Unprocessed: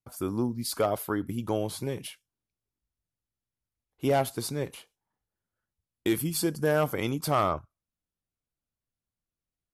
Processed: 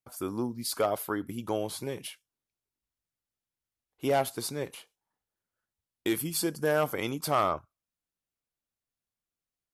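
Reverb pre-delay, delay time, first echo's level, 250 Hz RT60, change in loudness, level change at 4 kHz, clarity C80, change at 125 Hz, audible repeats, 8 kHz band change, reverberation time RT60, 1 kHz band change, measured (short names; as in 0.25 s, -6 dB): none, none, none, none, -1.5 dB, 0.0 dB, none, -6.5 dB, none, 0.0 dB, none, -0.5 dB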